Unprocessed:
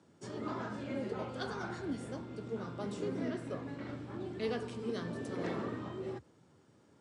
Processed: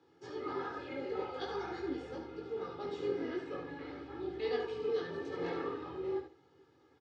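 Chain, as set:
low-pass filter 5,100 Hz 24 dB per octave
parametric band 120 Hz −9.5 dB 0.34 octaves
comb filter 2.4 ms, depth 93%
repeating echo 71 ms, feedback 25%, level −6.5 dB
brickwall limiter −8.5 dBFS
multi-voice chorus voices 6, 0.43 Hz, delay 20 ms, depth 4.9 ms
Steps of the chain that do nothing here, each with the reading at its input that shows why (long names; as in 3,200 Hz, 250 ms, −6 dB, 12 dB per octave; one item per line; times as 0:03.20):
brickwall limiter −8.5 dBFS: peak of its input −21.0 dBFS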